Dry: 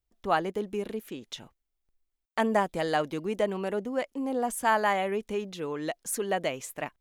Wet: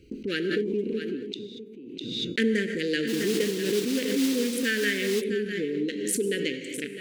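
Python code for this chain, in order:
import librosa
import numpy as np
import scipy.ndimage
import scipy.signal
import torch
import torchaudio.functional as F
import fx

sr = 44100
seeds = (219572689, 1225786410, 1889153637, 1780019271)

y = fx.wiener(x, sr, points=25)
y = scipy.signal.sosfilt(scipy.signal.ellip(3, 1.0, 40, [470.0, 1600.0], 'bandstop', fs=sr, output='sos'), y)
y = fx.peak_eq(y, sr, hz=280.0, db=11.5, octaves=1.8)
y = fx.comb_fb(y, sr, f0_hz=140.0, decay_s=1.0, harmonics='odd', damping=0.0, mix_pct=30)
y = y + 10.0 ** (-12.0 / 20.0) * np.pad(y, (int(653 * sr / 1000.0), 0))[:len(y)]
y = fx.rev_gated(y, sr, seeds[0], gate_ms=260, shape='flat', drr_db=8.0)
y = fx.mod_noise(y, sr, seeds[1], snr_db=17, at=(3.07, 5.2), fade=0.02)
y = fx.weighting(y, sr, curve='D')
y = fx.pre_swell(y, sr, db_per_s=35.0)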